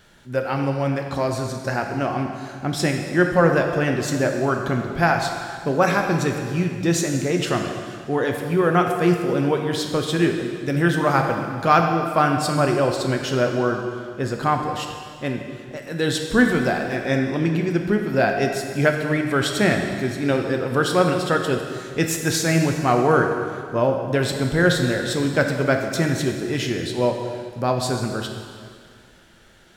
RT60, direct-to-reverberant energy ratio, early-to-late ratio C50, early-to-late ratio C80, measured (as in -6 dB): 2.1 s, 3.0 dB, 4.5 dB, 5.5 dB